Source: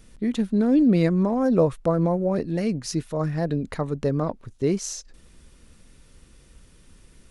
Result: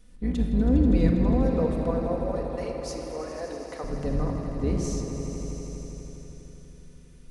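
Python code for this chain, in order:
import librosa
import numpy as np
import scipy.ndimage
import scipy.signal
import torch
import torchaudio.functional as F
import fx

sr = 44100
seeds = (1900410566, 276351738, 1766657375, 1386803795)

y = fx.octave_divider(x, sr, octaves=2, level_db=4.0)
y = fx.highpass(y, sr, hz=370.0, slope=24, at=(1.45, 3.84))
y = fx.echo_swell(y, sr, ms=81, loudest=5, wet_db=-13.5)
y = fx.room_shoebox(y, sr, seeds[0], volume_m3=3300.0, walls='mixed', distance_m=1.9)
y = y * 10.0 ** (-9.0 / 20.0)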